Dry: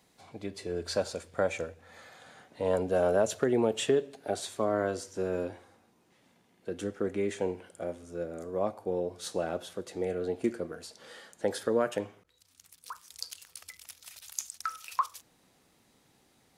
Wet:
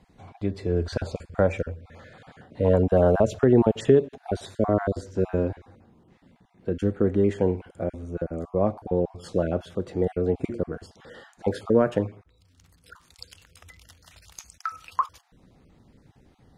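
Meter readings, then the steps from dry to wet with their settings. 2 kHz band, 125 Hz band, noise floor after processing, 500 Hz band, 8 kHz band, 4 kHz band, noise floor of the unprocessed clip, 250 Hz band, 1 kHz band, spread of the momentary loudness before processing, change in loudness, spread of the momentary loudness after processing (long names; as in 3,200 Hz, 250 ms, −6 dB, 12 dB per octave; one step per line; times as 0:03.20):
+1.5 dB, +15.0 dB, −61 dBFS, +6.5 dB, can't be measured, −3.5 dB, −67 dBFS, +9.5 dB, +4.0 dB, 19 LU, +7.0 dB, 13 LU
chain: time-frequency cells dropped at random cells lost 21%
RIAA equalisation playback
level +4.5 dB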